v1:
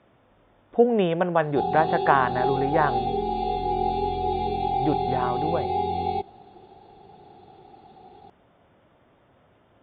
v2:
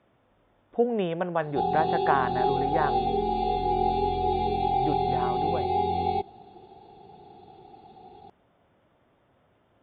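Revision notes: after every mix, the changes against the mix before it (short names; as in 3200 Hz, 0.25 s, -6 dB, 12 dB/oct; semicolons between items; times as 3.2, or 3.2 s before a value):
speech -5.5 dB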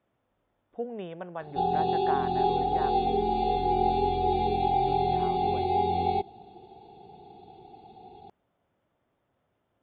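speech -10.5 dB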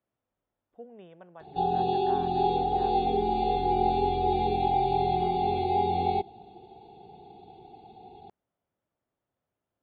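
speech -11.5 dB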